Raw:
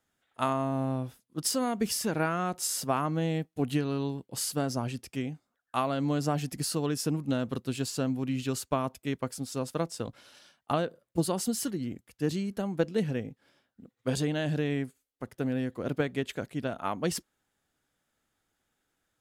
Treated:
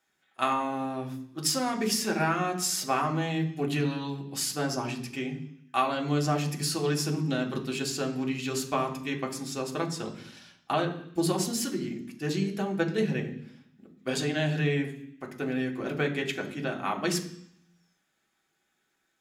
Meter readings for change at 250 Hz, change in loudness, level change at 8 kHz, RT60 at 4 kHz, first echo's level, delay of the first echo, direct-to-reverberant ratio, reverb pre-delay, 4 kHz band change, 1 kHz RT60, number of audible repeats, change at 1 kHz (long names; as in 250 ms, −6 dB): +0.5 dB, +1.5 dB, +2.0 dB, 0.85 s, no echo audible, no echo audible, 1.0 dB, 3 ms, +4.5 dB, 0.70 s, no echo audible, +3.0 dB